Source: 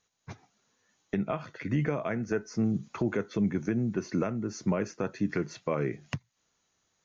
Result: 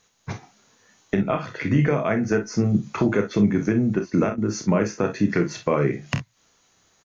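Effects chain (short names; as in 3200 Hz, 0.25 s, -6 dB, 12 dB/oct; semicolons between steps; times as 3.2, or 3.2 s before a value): in parallel at -0.5 dB: compressor, threshold -41 dBFS, peak gain reduction 17 dB; 3.98–4.67 on the sum: step gate "x..xx.xx" 185 bpm -12 dB; early reflections 29 ms -8 dB, 47 ms -10 dB, 62 ms -15 dB; gain +6.5 dB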